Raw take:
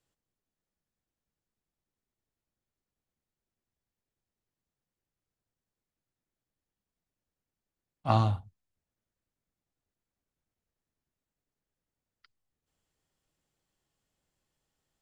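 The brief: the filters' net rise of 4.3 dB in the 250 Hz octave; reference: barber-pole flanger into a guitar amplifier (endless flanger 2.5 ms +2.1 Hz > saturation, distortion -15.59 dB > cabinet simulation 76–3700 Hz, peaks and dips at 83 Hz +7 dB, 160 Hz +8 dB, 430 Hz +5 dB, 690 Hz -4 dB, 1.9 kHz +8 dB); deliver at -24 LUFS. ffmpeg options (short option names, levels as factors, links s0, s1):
-filter_complex "[0:a]equalizer=f=250:t=o:g=3.5,asplit=2[s0][s1];[s1]adelay=2.5,afreqshift=2.1[s2];[s0][s2]amix=inputs=2:normalize=1,asoftclip=threshold=0.0668,highpass=76,equalizer=f=83:t=q:w=4:g=7,equalizer=f=160:t=q:w=4:g=8,equalizer=f=430:t=q:w=4:g=5,equalizer=f=690:t=q:w=4:g=-4,equalizer=f=1900:t=q:w=4:g=8,lowpass=f=3700:w=0.5412,lowpass=f=3700:w=1.3066,volume=2.99"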